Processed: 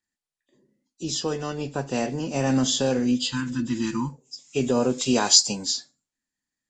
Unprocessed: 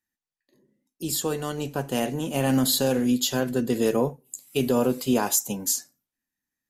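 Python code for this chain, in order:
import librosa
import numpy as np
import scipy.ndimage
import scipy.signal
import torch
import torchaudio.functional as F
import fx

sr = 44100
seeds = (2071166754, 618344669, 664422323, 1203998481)

y = fx.freq_compress(x, sr, knee_hz=2400.0, ratio=1.5)
y = fx.spec_repair(y, sr, seeds[0], start_s=3.17, length_s=0.95, low_hz=350.0, high_hz=830.0, source='after')
y = fx.high_shelf(y, sr, hz=2100.0, db=10.0, at=(4.98, 5.65))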